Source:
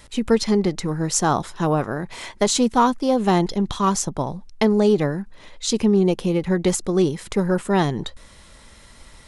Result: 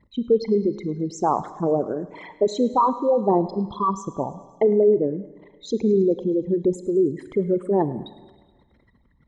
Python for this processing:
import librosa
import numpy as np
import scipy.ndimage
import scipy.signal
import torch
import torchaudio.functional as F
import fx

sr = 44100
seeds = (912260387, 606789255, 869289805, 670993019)

p1 = fx.envelope_sharpen(x, sr, power=3.0)
p2 = fx.bandpass_q(p1, sr, hz=510.0, q=0.57)
p3 = p2 + fx.echo_thinned(p2, sr, ms=106, feedback_pct=69, hz=530.0, wet_db=-18.5, dry=0)
y = fx.rev_schroeder(p3, sr, rt60_s=1.4, comb_ms=30, drr_db=15.0)